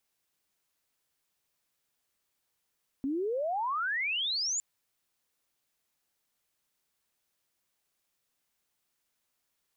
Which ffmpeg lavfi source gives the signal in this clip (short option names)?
-f lavfi -i "aevalsrc='0.0376*sin(2*PI*260*1.56/log(7300/260)*(exp(log(7300/260)*t/1.56)-1))':d=1.56:s=44100"